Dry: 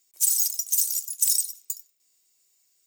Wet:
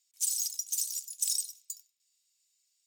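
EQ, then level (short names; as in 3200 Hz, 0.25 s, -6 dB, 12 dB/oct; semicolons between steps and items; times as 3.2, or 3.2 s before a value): band-pass 3600 Hz, Q 1; tilt +4.5 dB/oct; high shelf 3400 Hz -7.5 dB; -7.5 dB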